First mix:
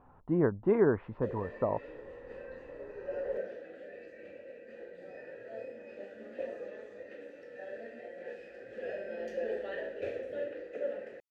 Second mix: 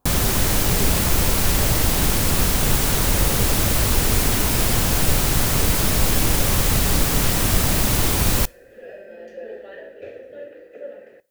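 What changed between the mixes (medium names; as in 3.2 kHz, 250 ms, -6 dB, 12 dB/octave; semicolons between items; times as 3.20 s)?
speech -9.0 dB; first sound: unmuted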